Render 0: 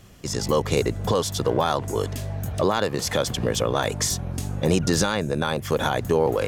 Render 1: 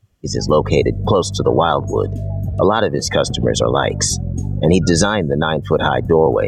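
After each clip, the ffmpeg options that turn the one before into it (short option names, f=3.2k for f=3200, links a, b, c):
-af "afftdn=nr=26:nf=-30,volume=8dB"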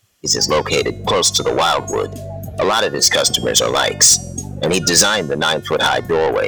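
-filter_complex "[0:a]asplit=2[a][b];[b]highpass=f=720:p=1,volume=18dB,asoftclip=type=tanh:threshold=-1.5dB[c];[a][c]amix=inputs=2:normalize=0,lowpass=f=4.2k:p=1,volume=-6dB,bandreject=f=359.1:t=h:w=4,bandreject=f=718.2:t=h:w=4,bandreject=f=1.0773k:t=h:w=4,bandreject=f=1.4364k:t=h:w=4,bandreject=f=1.7955k:t=h:w=4,bandreject=f=2.1546k:t=h:w=4,bandreject=f=2.5137k:t=h:w=4,bandreject=f=2.8728k:t=h:w=4,bandreject=f=3.2319k:t=h:w=4,bandreject=f=3.591k:t=h:w=4,bandreject=f=3.9501k:t=h:w=4,bandreject=f=4.3092k:t=h:w=4,bandreject=f=4.6683k:t=h:w=4,bandreject=f=5.0274k:t=h:w=4,bandreject=f=5.3865k:t=h:w=4,bandreject=f=5.7456k:t=h:w=4,bandreject=f=6.1047k:t=h:w=4,bandreject=f=6.4638k:t=h:w=4,bandreject=f=6.8229k:t=h:w=4,bandreject=f=7.182k:t=h:w=4,bandreject=f=7.5411k:t=h:w=4,bandreject=f=7.9002k:t=h:w=4,bandreject=f=8.2593k:t=h:w=4,bandreject=f=8.6184k:t=h:w=4,bandreject=f=8.9775k:t=h:w=4,bandreject=f=9.3366k:t=h:w=4,bandreject=f=9.6957k:t=h:w=4,bandreject=f=10.0548k:t=h:w=4,bandreject=f=10.4139k:t=h:w=4,bandreject=f=10.773k:t=h:w=4,bandreject=f=11.1321k:t=h:w=4,bandreject=f=11.4912k:t=h:w=4,bandreject=f=11.8503k:t=h:w=4,bandreject=f=12.2094k:t=h:w=4,bandreject=f=12.5685k:t=h:w=4,bandreject=f=12.9276k:t=h:w=4,bandreject=f=13.2867k:t=h:w=4,bandreject=f=13.6458k:t=h:w=4,crystalizer=i=4:c=0,volume=-6.5dB"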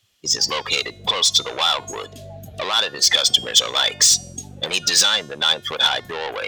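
-filter_complex "[0:a]equalizer=f=3.5k:w=1.2:g=10.5,acrossover=split=650|5500[a][b][c];[a]acompressor=threshold=-27dB:ratio=6[d];[d][b][c]amix=inputs=3:normalize=0,volume=-7.5dB"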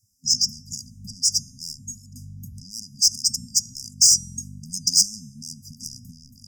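-af "afftfilt=real='re*(1-between(b*sr/4096,260,4800))':imag='im*(1-between(b*sr/4096,260,4800))':win_size=4096:overlap=0.75"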